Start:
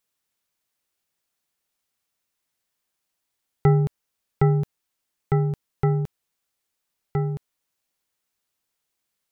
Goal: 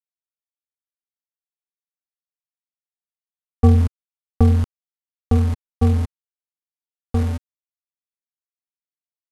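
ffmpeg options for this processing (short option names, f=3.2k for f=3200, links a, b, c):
-af "aeval=exprs='val(0)*gte(abs(val(0)),0.0299)':c=same,asetrate=25476,aresample=44100,atempo=1.73107,volume=5dB"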